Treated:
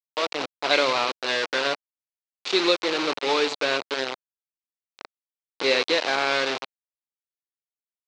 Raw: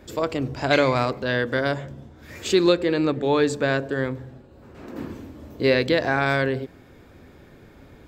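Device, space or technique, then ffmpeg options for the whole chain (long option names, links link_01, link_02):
hand-held game console: -af "acrusher=bits=3:mix=0:aa=0.000001,highpass=470,equalizer=frequency=640:width_type=q:width=4:gain=-3,equalizer=frequency=1700:width_type=q:width=4:gain=-4,equalizer=frequency=2500:width_type=q:width=4:gain=3,equalizer=frequency=4000:width_type=q:width=4:gain=5,lowpass=frequency=5400:width=0.5412,lowpass=frequency=5400:width=1.3066"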